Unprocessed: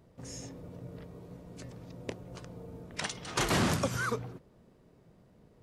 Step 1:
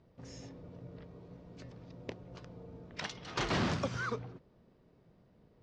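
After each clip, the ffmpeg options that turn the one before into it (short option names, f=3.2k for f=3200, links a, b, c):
-af "lowpass=f=5.5k:w=0.5412,lowpass=f=5.5k:w=1.3066,volume=-4dB"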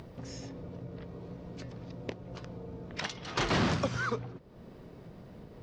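-af "acompressor=mode=upward:threshold=-41dB:ratio=2.5,volume=4dB"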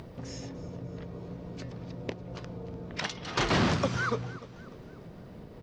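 -af "aecho=1:1:296|592|888|1184:0.133|0.0613|0.0282|0.013,volume=2.5dB"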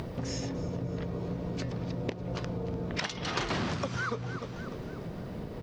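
-af "acompressor=threshold=-37dB:ratio=8,volume=7.5dB"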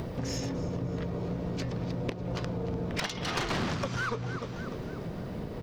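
-af "aeval=exprs='clip(val(0),-1,0.0266)':c=same,volume=2dB"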